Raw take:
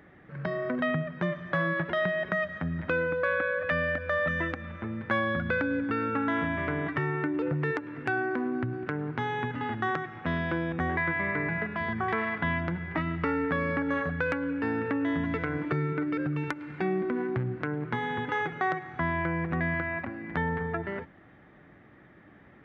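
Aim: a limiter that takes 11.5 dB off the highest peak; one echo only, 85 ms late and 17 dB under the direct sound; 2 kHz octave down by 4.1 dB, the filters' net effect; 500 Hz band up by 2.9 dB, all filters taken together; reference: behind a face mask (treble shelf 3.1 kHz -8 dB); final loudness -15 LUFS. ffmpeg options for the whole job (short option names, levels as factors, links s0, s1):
-af "equalizer=f=500:t=o:g=4,equalizer=f=2000:t=o:g=-3,alimiter=level_in=1.06:limit=0.0631:level=0:latency=1,volume=0.944,highshelf=f=3100:g=-8,aecho=1:1:85:0.141,volume=8.41"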